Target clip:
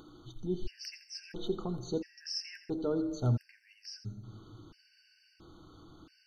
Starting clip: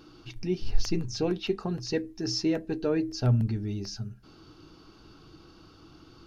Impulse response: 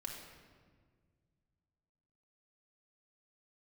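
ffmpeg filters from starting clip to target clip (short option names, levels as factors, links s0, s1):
-filter_complex "[0:a]acompressor=mode=upward:threshold=0.00631:ratio=2.5,asplit=2[s0][s1];[1:a]atrim=start_sample=2205,lowshelf=f=66:g=4,adelay=84[s2];[s1][s2]afir=irnorm=-1:irlink=0,volume=0.355[s3];[s0][s3]amix=inputs=2:normalize=0,afftfilt=real='re*gt(sin(2*PI*0.74*pts/sr)*(1-2*mod(floor(b*sr/1024/1500),2)),0)':imag='im*gt(sin(2*PI*0.74*pts/sr)*(1-2*mod(floor(b*sr/1024/1500),2)),0)':win_size=1024:overlap=0.75,volume=0.562"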